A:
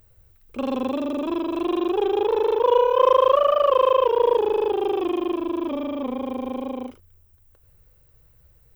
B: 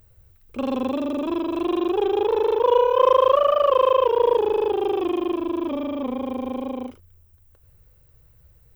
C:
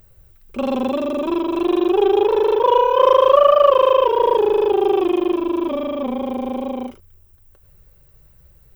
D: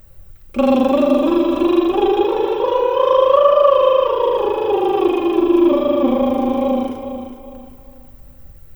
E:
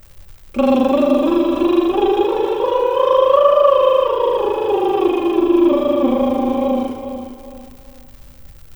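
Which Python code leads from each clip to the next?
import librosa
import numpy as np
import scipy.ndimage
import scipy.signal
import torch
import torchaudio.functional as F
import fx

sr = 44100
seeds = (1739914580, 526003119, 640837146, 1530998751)

y1 = fx.peak_eq(x, sr, hz=94.0, db=3.5, octaves=1.9)
y2 = y1 + 0.42 * np.pad(y1, (int(5.2 * sr / 1000.0), 0))[:len(y1)]
y2 = y2 * 10.0 ** (4.0 / 20.0)
y3 = fx.rider(y2, sr, range_db=5, speed_s=2.0)
y3 = fx.echo_feedback(y3, sr, ms=410, feedback_pct=34, wet_db=-10)
y3 = fx.room_shoebox(y3, sr, seeds[0], volume_m3=2400.0, walls='furnished', distance_m=2.3)
y3 = y3 * 10.0 ** (-1.0 / 20.0)
y4 = fx.dmg_crackle(y3, sr, seeds[1], per_s=240.0, level_db=-35.0)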